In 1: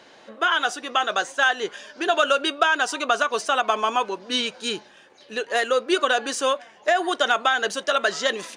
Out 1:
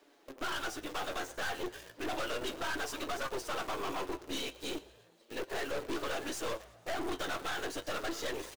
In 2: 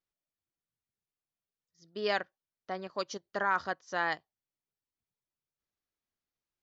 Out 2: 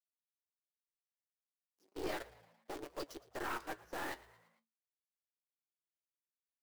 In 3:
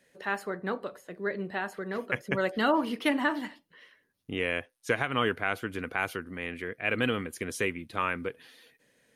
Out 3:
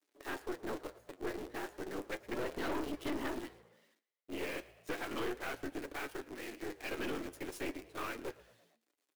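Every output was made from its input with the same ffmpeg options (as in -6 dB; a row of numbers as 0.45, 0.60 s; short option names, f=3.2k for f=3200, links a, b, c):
-filter_complex "[0:a]afftfilt=real='hypot(re,im)*cos(2*PI*random(0))':imag='hypot(re,im)*sin(2*PI*random(1))':win_size=512:overlap=0.75,acrusher=bits=8:dc=4:mix=0:aa=0.000001,highpass=f=320:t=q:w=3.5,flanger=delay=6.9:depth=4.5:regen=54:speed=0.34:shape=sinusoidal,aeval=exprs='(tanh(63.1*val(0)+0.75)-tanh(0.75))/63.1':c=same,asplit=2[a][b];[b]asplit=4[c][d][e][f];[c]adelay=113,afreqshift=56,volume=-20dB[g];[d]adelay=226,afreqshift=112,volume=-25dB[h];[e]adelay=339,afreqshift=168,volume=-30.1dB[i];[f]adelay=452,afreqshift=224,volume=-35.1dB[j];[g][h][i][j]amix=inputs=4:normalize=0[k];[a][k]amix=inputs=2:normalize=0,volume=2dB"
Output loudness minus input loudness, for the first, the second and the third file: -15.5, -10.5, -10.5 LU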